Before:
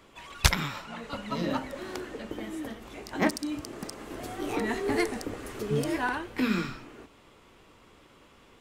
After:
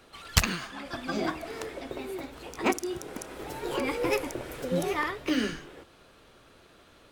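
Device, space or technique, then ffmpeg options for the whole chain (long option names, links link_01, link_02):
nightcore: -af "asetrate=53361,aresample=44100"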